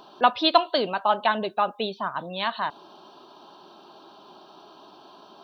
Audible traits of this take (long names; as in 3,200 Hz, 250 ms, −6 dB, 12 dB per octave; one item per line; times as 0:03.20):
background noise floor −51 dBFS
spectral slope −0.5 dB per octave